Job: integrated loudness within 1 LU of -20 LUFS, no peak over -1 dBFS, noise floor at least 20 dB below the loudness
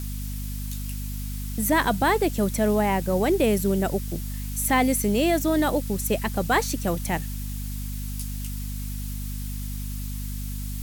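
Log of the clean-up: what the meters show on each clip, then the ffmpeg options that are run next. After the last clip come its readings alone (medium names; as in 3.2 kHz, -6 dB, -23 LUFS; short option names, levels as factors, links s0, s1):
hum 50 Hz; highest harmonic 250 Hz; hum level -29 dBFS; noise floor -31 dBFS; noise floor target -46 dBFS; loudness -26.0 LUFS; peak level -10.0 dBFS; loudness target -20.0 LUFS
-> -af "bandreject=f=50:t=h:w=6,bandreject=f=100:t=h:w=6,bandreject=f=150:t=h:w=6,bandreject=f=200:t=h:w=6,bandreject=f=250:t=h:w=6"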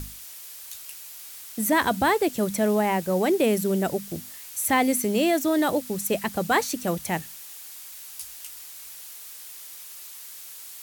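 hum not found; noise floor -42 dBFS; noise floor target -45 dBFS
-> -af "afftdn=nr=6:nf=-42"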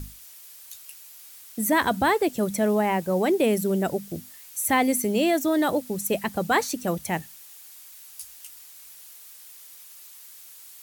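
noise floor -47 dBFS; loudness -24.0 LUFS; peak level -10.5 dBFS; loudness target -20.0 LUFS
-> -af "volume=1.58"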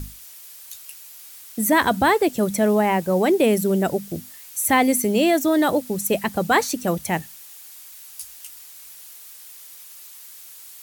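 loudness -20.0 LUFS; peak level -6.5 dBFS; noise floor -43 dBFS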